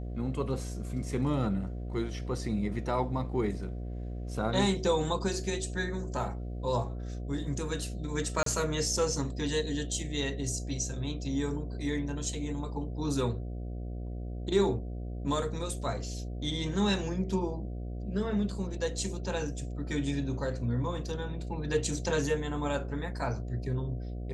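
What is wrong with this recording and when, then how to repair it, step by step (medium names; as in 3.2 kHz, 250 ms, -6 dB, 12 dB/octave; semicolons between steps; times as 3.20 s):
buzz 60 Hz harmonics 12 -37 dBFS
8.43–8.46 s: dropout 33 ms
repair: de-hum 60 Hz, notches 12; interpolate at 8.43 s, 33 ms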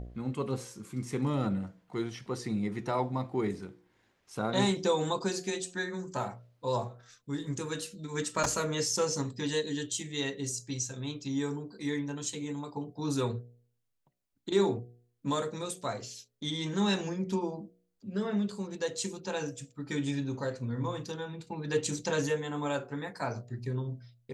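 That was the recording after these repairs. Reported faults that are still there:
nothing left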